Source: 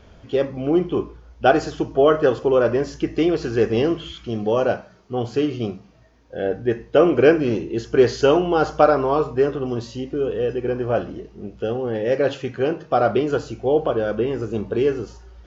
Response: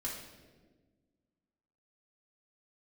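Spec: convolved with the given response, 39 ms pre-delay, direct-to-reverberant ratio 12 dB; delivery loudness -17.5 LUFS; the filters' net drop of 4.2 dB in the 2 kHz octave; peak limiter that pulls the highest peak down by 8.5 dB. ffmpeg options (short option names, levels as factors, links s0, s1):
-filter_complex "[0:a]equalizer=f=2000:t=o:g=-6.5,alimiter=limit=0.282:level=0:latency=1,asplit=2[s0][s1];[1:a]atrim=start_sample=2205,adelay=39[s2];[s1][s2]afir=irnorm=-1:irlink=0,volume=0.224[s3];[s0][s3]amix=inputs=2:normalize=0,volume=1.78"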